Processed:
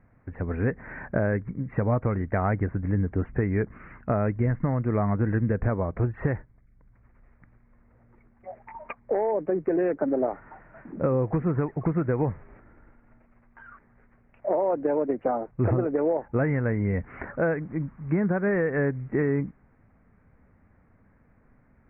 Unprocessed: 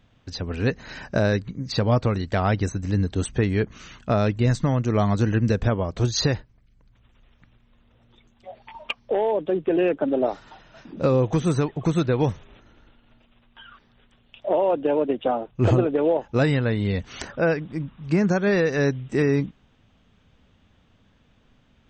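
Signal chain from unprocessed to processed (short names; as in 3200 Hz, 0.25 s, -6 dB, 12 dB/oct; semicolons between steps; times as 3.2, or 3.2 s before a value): steep low-pass 2200 Hz 72 dB/oct; compressor 2.5:1, threshold -22 dBFS, peak gain reduction 6 dB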